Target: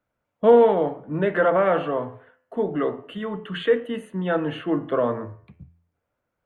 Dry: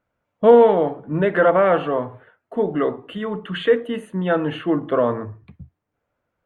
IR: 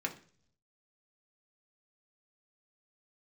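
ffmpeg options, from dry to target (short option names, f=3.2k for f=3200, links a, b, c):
-filter_complex "[0:a]bandreject=f=85.16:t=h:w=4,bandreject=f=170.32:t=h:w=4,bandreject=f=255.48:t=h:w=4,bandreject=f=340.64:t=h:w=4,bandreject=f=425.8:t=h:w=4,bandreject=f=510.96:t=h:w=4,bandreject=f=596.12:t=h:w=4,bandreject=f=681.28:t=h:w=4,bandreject=f=766.44:t=h:w=4,bandreject=f=851.6:t=h:w=4,bandreject=f=936.76:t=h:w=4,bandreject=f=1.02192k:t=h:w=4,bandreject=f=1.10708k:t=h:w=4,bandreject=f=1.19224k:t=h:w=4,bandreject=f=1.2774k:t=h:w=4,bandreject=f=1.36256k:t=h:w=4,bandreject=f=1.44772k:t=h:w=4,bandreject=f=1.53288k:t=h:w=4,bandreject=f=1.61804k:t=h:w=4,bandreject=f=1.7032k:t=h:w=4,bandreject=f=1.78836k:t=h:w=4,bandreject=f=1.87352k:t=h:w=4,bandreject=f=1.95868k:t=h:w=4,bandreject=f=2.04384k:t=h:w=4,bandreject=f=2.129k:t=h:w=4,bandreject=f=2.21416k:t=h:w=4,bandreject=f=2.29932k:t=h:w=4,bandreject=f=2.38448k:t=h:w=4,bandreject=f=2.46964k:t=h:w=4,bandreject=f=2.5548k:t=h:w=4,bandreject=f=2.63996k:t=h:w=4,bandreject=f=2.72512k:t=h:w=4,bandreject=f=2.81028k:t=h:w=4,bandreject=f=2.89544k:t=h:w=4,bandreject=f=2.9806k:t=h:w=4,bandreject=f=3.06576k:t=h:w=4,bandreject=f=3.15092k:t=h:w=4,acrossover=split=130|1000[a][b][c];[a]asoftclip=type=hard:threshold=-37dB[d];[d][b][c]amix=inputs=3:normalize=0,volume=-3dB"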